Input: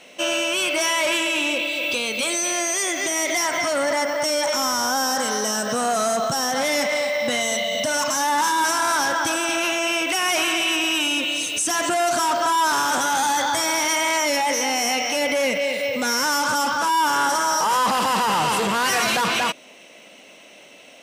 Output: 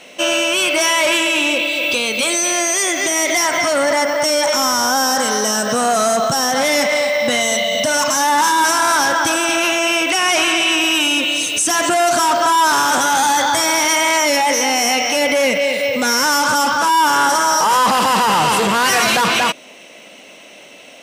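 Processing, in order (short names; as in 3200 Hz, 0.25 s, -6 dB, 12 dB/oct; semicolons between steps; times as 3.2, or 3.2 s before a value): 10.1–10.77 LPF 10000 Hz 12 dB/oct; gain +6 dB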